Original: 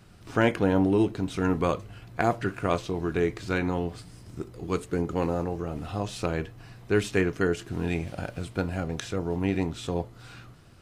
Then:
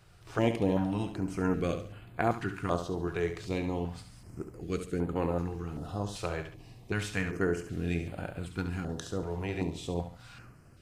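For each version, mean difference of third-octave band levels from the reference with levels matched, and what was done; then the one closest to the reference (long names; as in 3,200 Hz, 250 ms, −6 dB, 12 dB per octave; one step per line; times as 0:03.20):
3.0 dB: flutter between parallel walls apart 11.9 metres, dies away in 0.46 s
notch on a step sequencer 2.6 Hz 240–5,700 Hz
level −4 dB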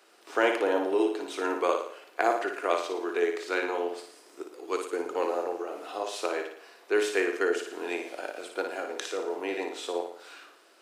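10.0 dB: Butterworth high-pass 350 Hz 36 dB per octave
flutter between parallel walls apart 9.8 metres, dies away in 0.58 s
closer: first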